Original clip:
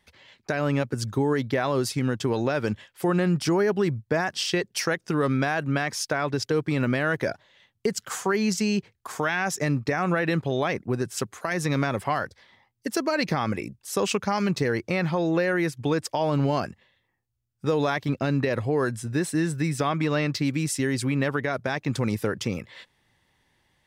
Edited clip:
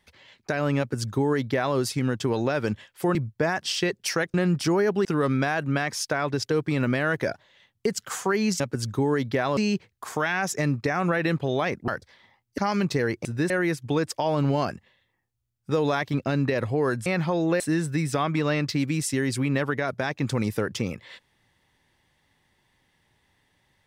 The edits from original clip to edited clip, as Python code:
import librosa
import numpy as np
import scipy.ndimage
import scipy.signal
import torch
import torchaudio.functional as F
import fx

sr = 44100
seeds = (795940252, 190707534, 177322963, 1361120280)

y = fx.edit(x, sr, fx.duplicate(start_s=0.79, length_s=0.97, to_s=8.6),
    fx.move(start_s=3.15, length_s=0.71, to_s=5.05),
    fx.cut(start_s=10.91, length_s=1.26),
    fx.cut(start_s=12.87, length_s=1.37),
    fx.swap(start_s=14.91, length_s=0.54, other_s=19.01, other_length_s=0.25), tone=tone)